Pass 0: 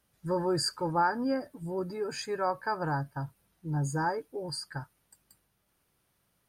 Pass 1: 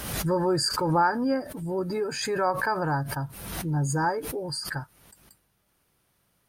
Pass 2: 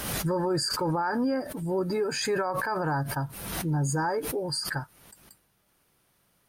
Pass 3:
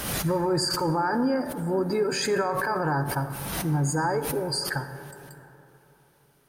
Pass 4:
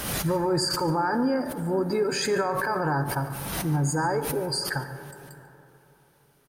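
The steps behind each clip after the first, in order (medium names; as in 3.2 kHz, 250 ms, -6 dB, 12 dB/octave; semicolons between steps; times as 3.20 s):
swell ahead of each attack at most 46 dB/s; trim +4 dB
peaking EQ 65 Hz -4.5 dB 1.8 oct; peak limiter -22 dBFS, peak gain reduction 10 dB; trim +2 dB
reverberation RT60 3.3 s, pre-delay 38 ms, DRR 10 dB; trim +2 dB
delay 144 ms -19 dB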